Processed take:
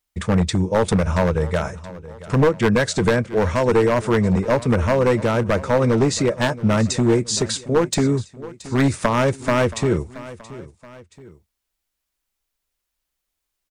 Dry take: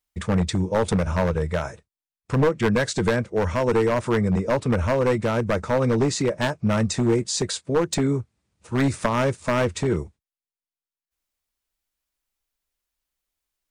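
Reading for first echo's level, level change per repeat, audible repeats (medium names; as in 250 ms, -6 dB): -17.5 dB, -6.5 dB, 2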